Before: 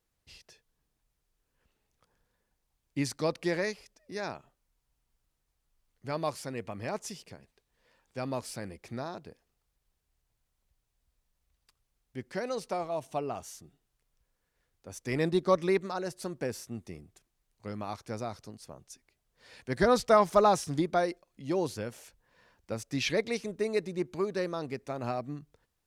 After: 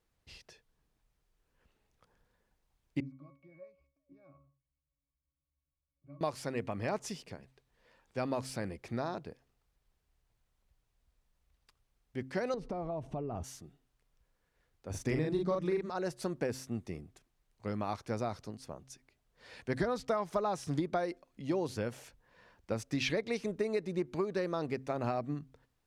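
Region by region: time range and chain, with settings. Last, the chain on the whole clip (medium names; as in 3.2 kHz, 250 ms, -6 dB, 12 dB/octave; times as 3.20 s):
3.00–6.21 s: compression 2:1, threshold -46 dBFS + pitch-class resonator C#, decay 0.29 s + loudspeaker Doppler distortion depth 0.1 ms
12.54–13.44 s: tilt EQ -4 dB/octave + compression 10:1, threshold -36 dBFS
14.90–15.90 s: bass shelf 270 Hz +9 dB + hum notches 60/120/180 Hz + doubling 39 ms -2 dB
whole clip: treble shelf 5 kHz -8 dB; de-hum 131.4 Hz, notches 2; compression 16:1, threshold -31 dBFS; trim +2.5 dB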